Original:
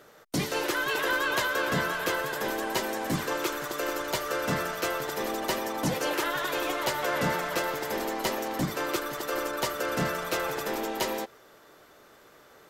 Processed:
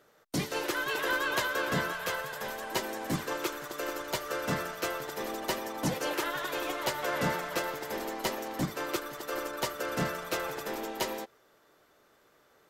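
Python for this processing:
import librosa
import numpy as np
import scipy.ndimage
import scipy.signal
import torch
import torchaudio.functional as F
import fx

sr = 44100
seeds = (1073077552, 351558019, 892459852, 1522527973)

y = fx.peak_eq(x, sr, hz=320.0, db=-14.5, octaves=0.43, at=(1.93, 2.72))
y = fx.upward_expand(y, sr, threshold_db=-40.0, expansion=1.5)
y = y * librosa.db_to_amplitude(-1.5)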